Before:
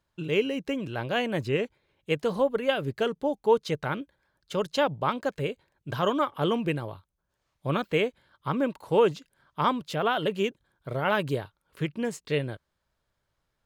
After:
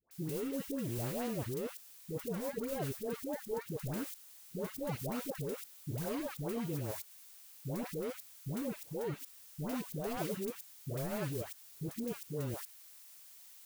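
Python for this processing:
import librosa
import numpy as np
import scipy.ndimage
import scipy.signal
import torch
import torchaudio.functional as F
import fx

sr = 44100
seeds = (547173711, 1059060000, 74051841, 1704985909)

y = scipy.ndimage.median_filter(x, 41, mode='constant')
y = fx.dmg_noise_colour(y, sr, seeds[0], colour='blue', level_db=-43.0)
y = fx.level_steps(y, sr, step_db=19)
y = fx.dispersion(y, sr, late='highs', ms=112.0, hz=820.0)
y = F.gain(torch.from_numpy(y), 1.0).numpy()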